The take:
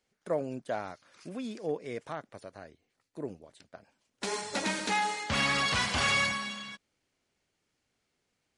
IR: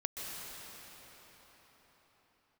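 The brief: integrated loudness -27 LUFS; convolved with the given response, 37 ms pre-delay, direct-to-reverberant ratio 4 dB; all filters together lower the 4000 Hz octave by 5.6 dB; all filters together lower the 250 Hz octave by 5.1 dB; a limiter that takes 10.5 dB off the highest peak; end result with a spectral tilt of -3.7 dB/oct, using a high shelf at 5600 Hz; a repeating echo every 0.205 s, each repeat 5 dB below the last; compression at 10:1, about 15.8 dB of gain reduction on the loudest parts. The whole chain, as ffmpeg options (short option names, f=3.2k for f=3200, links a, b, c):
-filter_complex "[0:a]equalizer=f=250:t=o:g=-6.5,equalizer=f=4k:t=o:g=-4.5,highshelf=f=5.6k:g=-7.5,acompressor=threshold=-43dB:ratio=10,alimiter=level_in=15.5dB:limit=-24dB:level=0:latency=1,volume=-15.5dB,aecho=1:1:205|410|615|820|1025|1230|1435:0.562|0.315|0.176|0.0988|0.0553|0.031|0.0173,asplit=2[a][b];[1:a]atrim=start_sample=2205,adelay=37[c];[b][c]afir=irnorm=-1:irlink=0,volume=-6.5dB[d];[a][d]amix=inputs=2:normalize=0,volume=20dB"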